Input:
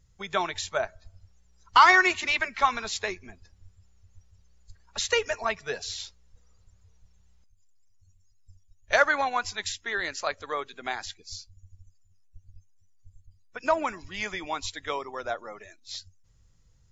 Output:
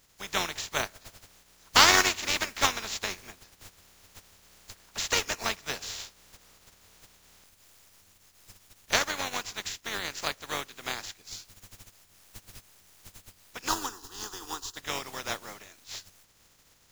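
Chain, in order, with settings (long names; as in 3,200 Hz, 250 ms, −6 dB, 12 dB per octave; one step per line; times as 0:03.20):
compressing power law on the bin magnitudes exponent 0.3
0:08.98–0:10.05: downward compressor 2 to 1, threshold −29 dBFS, peak gain reduction 8 dB
0:13.68–0:14.77: phaser with its sweep stopped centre 600 Hz, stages 6
level −2 dB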